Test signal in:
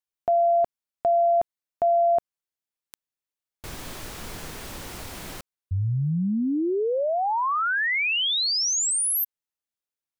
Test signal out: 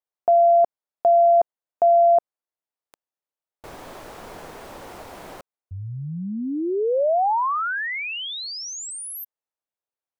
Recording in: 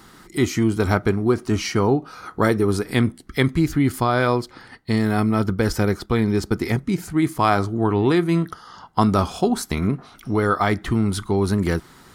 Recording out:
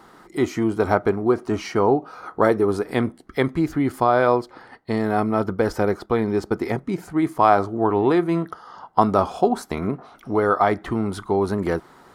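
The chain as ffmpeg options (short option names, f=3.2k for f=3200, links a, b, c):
-af "equalizer=f=670:t=o:w=2.7:g=15,volume=-10dB"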